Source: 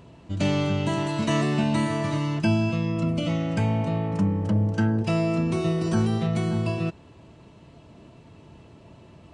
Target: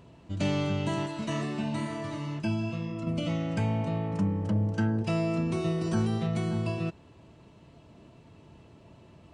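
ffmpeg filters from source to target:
-filter_complex "[0:a]asettb=1/sr,asplit=3[a][b][c];[a]atrim=end=1.064[d];[b]atrim=start=1.06:end=3.07,asetpts=PTS-STARTPTS,afade=t=in:d=0.004:c=qsin,afade=t=out:st=2.006:d=0.004:c=qsin,flanger=delay=2.8:depth=7.2:regen=-55:speed=1:shape=sinusoidal[e];[c]atrim=start=3.066[f];[d][e]acrossfade=d=0.004:c1=hsin:c2=qsin[g];[g][f]acrossfade=d=0.004:c1=qsin:c2=hsin,volume=-4.5dB"

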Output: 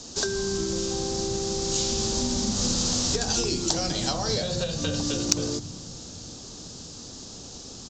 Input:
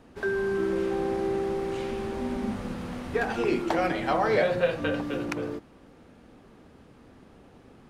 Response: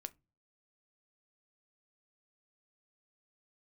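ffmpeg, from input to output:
-filter_complex "[0:a]highshelf=f=2.6k:t=q:w=3:g=6.5,acrossover=split=180[a][b];[a]aecho=1:1:180|432|784.8|1279|1970:0.631|0.398|0.251|0.158|0.1[c];[b]acompressor=threshold=-34dB:ratio=16[d];[c][d]amix=inputs=2:normalize=0,aexciter=amount=12.4:drive=6.4:freq=4.7k,aresample=16000,acrusher=bits=6:mode=log:mix=0:aa=0.000001,aresample=44100,acontrast=59"

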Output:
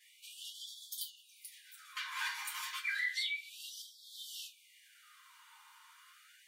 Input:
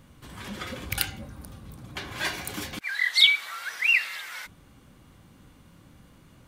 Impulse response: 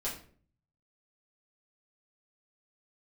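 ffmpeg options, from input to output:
-filter_complex "[0:a]acompressor=threshold=-38dB:ratio=6[a];[1:a]atrim=start_sample=2205,afade=t=out:st=0.18:d=0.01,atrim=end_sample=8379,asetrate=66150,aresample=44100[b];[a][b]afir=irnorm=-1:irlink=0,afftfilt=real='re*gte(b*sr/1024,810*pow(3200/810,0.5+0.5*sin(2*PI*0.31*pts/sr)))':imag='im*gte(b*sr/1024,810*pow(3200/810,0.5+0.5*sin(2*PI*0.31*pts/sr)))':win_size=1024:overlap=0.75,volume=3.5dB"

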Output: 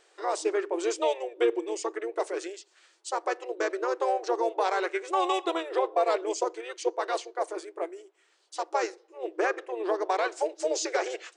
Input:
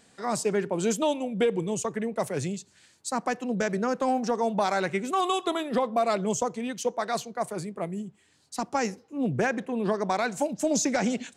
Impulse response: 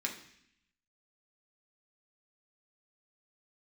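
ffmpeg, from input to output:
-filter_complex "[0:a]highshelf=f=6.3k:g=-8.5,asplit=2[a][b];[b]asetrate=33038,aresample=44100,atempo=1.33484,volume=-5dB[c];[a][c]amix=inputs=2:normalize=0,afftfilt=real='re*between(b*sr/4096,320,10000)':imag='im*between(b*sr/4096,320,10000)':win_size=4096:overlap=0.75,volume=-1dB"

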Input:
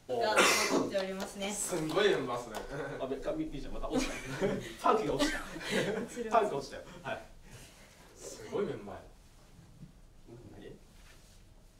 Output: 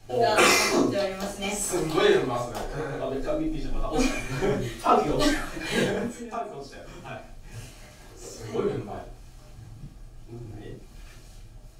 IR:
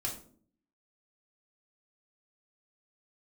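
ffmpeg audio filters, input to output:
-filter_complex "[0:a]asplit=3[a][b][c];[a]afade=t=out:st=6.07:d=0.02[d];[b]acompressor=threshold=-45dB:ratio=2.5,afade=t=in:st=6.07:d=0.02,afade=t=out:st=8.37:d=0.02[e];[c]afade=t=in:st=8.37:d=0.02[f];[d][e][f]amix=inputs=3:normalize=0[g];[1:a]atrim=start_sample=2205,atrim=end_sample=3969[h];[g][h]afir=irnorm=-1:irlink=0,volume=5.5dB"

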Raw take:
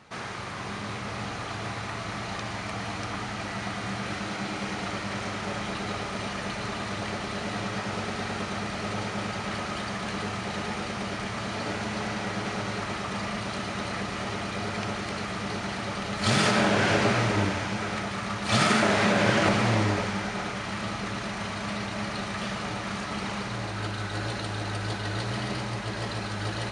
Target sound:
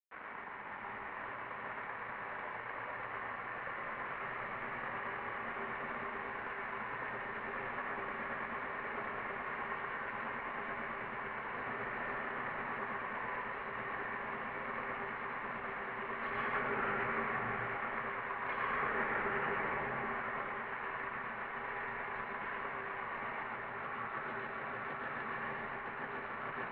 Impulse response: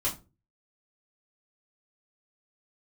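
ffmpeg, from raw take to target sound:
-filter_complex "[0:a]aeval=exprs='sgn(val(0))*max(abs(val(0))-0.0133,0)':c=same,alimiter=limit=-21dB:level=0:latency=1:release=147,tiltshelf=f=1.1k:g=-8.5,asplit=2[a][b];[1:a]atrim=start_sample=2205,adelay=113[c];[b][c]afir=irnorm=-1:irlink=0,volume=-7dB[d];[a][d]amix=inputs=2:normalize=0,highpass=f=300:t=q:w=0.5412,highpass=f=300:t=q:w=1.307,lowpass=f=2.2k:t=q:w=0.5176,lowpass=f=2.2k:t=q:w=0.7071,lowpass=f=2.2k:t=q:w=1.932,afreqshift=-180,volume=-5dB"

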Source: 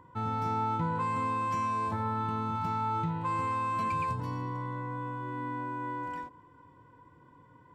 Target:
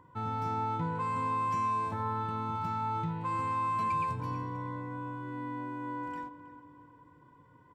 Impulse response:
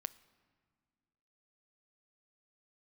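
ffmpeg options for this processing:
-filter_complex "[0:a]asplit=2[a][b];[b]adelay=320,lowpass=f=2k:p=1,volume=-13dB,asplit=2[c][d];[d]adelay=320,lowpass=f=2k:p=1,volume=0.45,asplit=2[e][f];[f]adelay=320,lowpass=f=2k:p=1,volume=0.45,asplit=2[g][h];[h]adelay=320,lowpass=f=2k:p=1,volume=0.45[i];[a][c][e][g][i]amix=inputs=5:normalize=0[j];[1:a]atrim=start_sample=2205[k];[j][k]afir=irnorm=-1:irlink=0"

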